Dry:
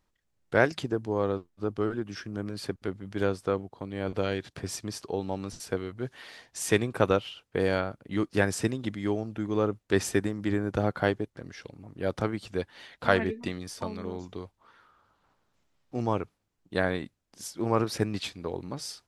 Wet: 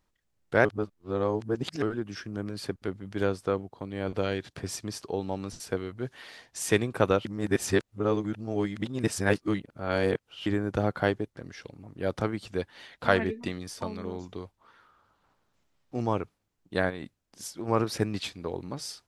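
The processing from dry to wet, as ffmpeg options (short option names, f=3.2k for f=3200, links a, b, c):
-filter_complex "[0:a]asplit=3[a][b][c];[a]afade=t=out:st=16.89:d=0.02[d];[b]acompressor=threshold=-31dB:ratio=6:attack=3.2:release=140:knee=1:detection=peak,afade=t=in:st=16.89:d=0.02,afade=t=out:st=17.67:d=0.02[e];[c]afade=t=in:st=17.67:d=0.02[f];[d][e][f]amix=inputs=3:normalize=0,asplit=5[g][h][i][j][k];[g]atrim=end=0.652[l];[h]atrim=start=0.648:end=1.822,asetpts=PTS-STARTPTS,areverse[m];[i]atrim=start=1.818:end=7.252[n];[j]atrim=start=7.248:end=10.462,asetpts=PTS-STARTPTS,areverse[o];[k]atrim=start=10.458[p];[l][m]acrossfade=d=0.004:c1=hsin:c2=hsin[q];[q][n]acrossfade=d=0.004:c1=hsin:c2=hsin[r];[r][o]acrossfade=d=0.004:c1=hsin:c2=hsin[s];[s][p]acrossfade=d=0.004:c1=hsin:c2=hsin"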